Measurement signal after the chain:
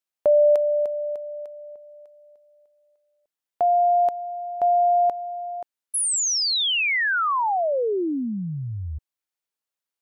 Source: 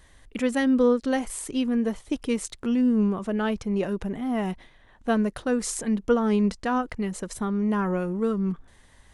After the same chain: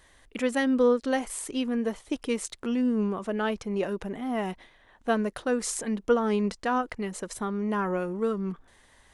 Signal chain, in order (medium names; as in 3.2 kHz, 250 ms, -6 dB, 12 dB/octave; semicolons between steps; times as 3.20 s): tone controls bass -8 dB, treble -1 dB